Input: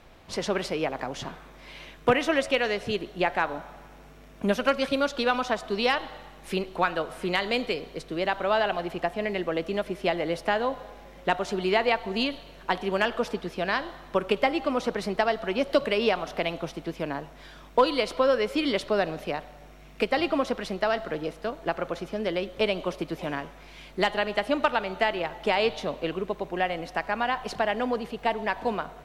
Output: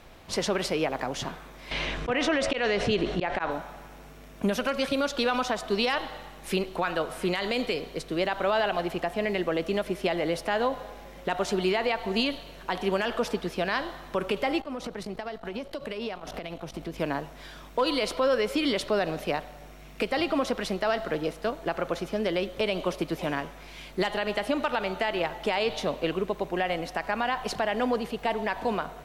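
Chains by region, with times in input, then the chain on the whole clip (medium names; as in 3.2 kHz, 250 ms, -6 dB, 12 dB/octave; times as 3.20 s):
1.71–3.51 s: slow attack 233 ms + distance through air 87 m + level flattener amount 50%
14.60–16.99 s: compression 8:1, threshold -34 dBFS + bass shelf 340 Hz +5.5 dB + transformer saturation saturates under 410 Hz
whole clip: treble shelf 6.7 kHz +5.5 dB; peak limiter -18.5 dBFS; trim +2 dB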